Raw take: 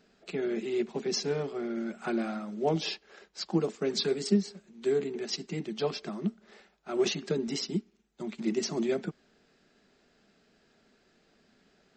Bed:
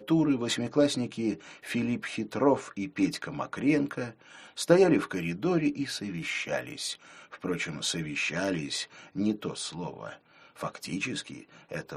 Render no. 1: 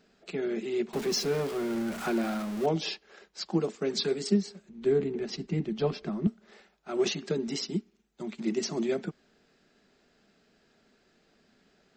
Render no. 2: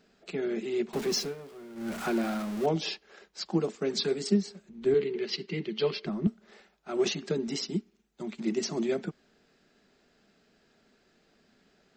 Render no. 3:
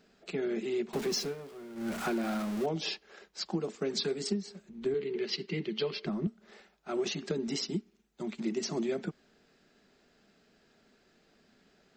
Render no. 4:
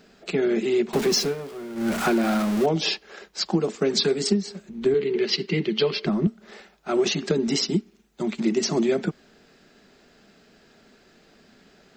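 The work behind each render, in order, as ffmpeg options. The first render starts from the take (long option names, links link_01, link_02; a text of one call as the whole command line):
ffmpeg -i in.wav -filter_complex "[0:a]asettb=1/sr,asplit=3[link_01][link_02][link_03];[link_01]atrim=end=0.934[link_04];[link_02]atrim=start=0.93:end=2.66,asetpts=PTS-STARTPTS,afade=type=in:duration=0.004:curve=qsin,afade=type=out:start_time=1.726:duration=0.004:curve=qsin,aeval=exprs='val(0)+0.5*0.02*sgn(val(0))':channel_layout=same[link_05];[link_03]atrim=start=2.656[link_06];[link_04][link_05]acrossfade=duration=0.004:curve1=hsin:curve2=qsin[link_07];[link_07][link_06]acrossfade=duration=0.004:curve1=qsin:curve2=hsin,asettb=1/sr,asplit=3[link_08][link_09][link_10];[link_08]atrim=end=4.694[link_11];[link_09]atrim=start=4.69:end=6.27,asetpts=PTS-STARTPTS,afade=type=in:duration=0.004:curve=qsin,afade=type=out:start_time=1.576:duration=0.004:curve=qsin,aemphasis=mode=reproduction:type=bsi[link_12];[link_10]atrim=start=6.266[link_13];[link_11][link_12]acrossfade=duration=0.004:curve1=hsin:curve2=qsin[link_14];[link_14][link_13]acrossfade=duration=0.004:curve1=qsin:curve2=hsin" out.wav
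ffmpeg -i in.wav -filter_complex "[0:a]asettb=1/sr,asplit=3[link_01][link_02][link_03];[link_01]atrim=end=4.944[link_04];[link_02]atrim=start=4.94:end=6.06,asetpts=PTS-STARTPTS,afade=type=in:duration=0.004:curve=qsin,afade=type=out:start_time=1.116:duration=0.004:curve=qsin,highpass=200,equalizer=frequency=260:width_type=q:width=4:gain=-9,equalizer=frequency=400:width_type=q:width=4:gain=4,equalizer=frequency=710:width_type=q:width=4:gain=-9,equalizer=frequency=2100:width_type=q:width=4:gain=7,equalizer=frequency=3000:width_type=q:width=4:gain=9,equalizer=frequency=4400:width_type=q:width=4:gain=9,lowpass=frequency=6200:width=0.5412,lowpass=frequency=6200:width=1.3066[link_05];[link_03]atrim=start=6.056[link_06];[link_04][link_05]acrossfade=duration=0.004:curve1=hsin:curve2=qsin[link_07];[link_07][link_06]acrossfade=duration=0.004:curve1=qsin:curve2=hsin,asplit=3[link_08][link_09][link_10];[link_08]atrim=end=1.35,asetpts=PTS-STARTPTS,afade=type=out:start_time=1.18:duration=0.17:silence=0.177828[link_11];[link_09]atrim=start=1.35:end=1.75,asetpts=PTS-STARTPTS,volume=-15dB[link_12];[link_10]atrim=start=1.75,asetpts=PTS-STARTPTS,afade=type=in:duration=0.17:silence=0.177828[link_13];[link_11][link_12][link_13]concat=n=3:v=0:a=1" out.wav
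ffmpeg -i in.wav -af "acompressor=threshold=-28dB:ratio=10" out.wav
ffmpeg -i in.wav -af "volume=10.5dB" out.wav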